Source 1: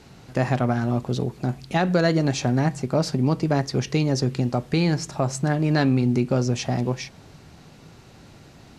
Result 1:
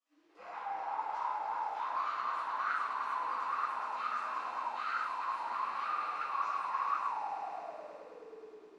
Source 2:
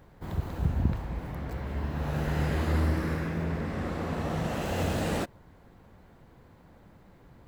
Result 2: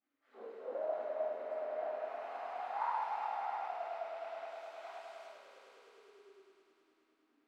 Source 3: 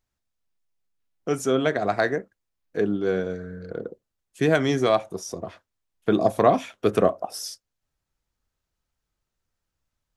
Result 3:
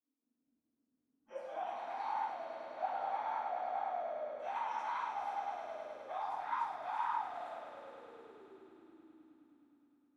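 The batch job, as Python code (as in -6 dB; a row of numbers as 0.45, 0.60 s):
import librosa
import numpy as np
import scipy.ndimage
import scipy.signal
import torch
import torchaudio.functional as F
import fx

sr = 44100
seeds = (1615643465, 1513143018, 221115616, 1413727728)

p1 = fx.spec_gate(x, sr, threshold_db=-25, keep='weak')
p2 = fx.over_compress(p1, sr, threshold_db=-50.0, ratio=-1.0)
p3 = p1 + (p2 * 10.0 ** (0.0 / 20.0))
p4 = fx.echo_swell(p3, sr, ms=104, loudest=5, wet_db=-8.5)
p5 = fx.room_shoebox(p4, sr, seeds[0], volume_m3=530.0, walls='mixed', distance_m=6.5)
y = fx.auto_wah(p5, sr, base_hz=270.0, top_hz=1400.0, q=11.0, full_db=-17.5, direction='up')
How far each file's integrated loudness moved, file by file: -13.0, -9.5, -16.0 LU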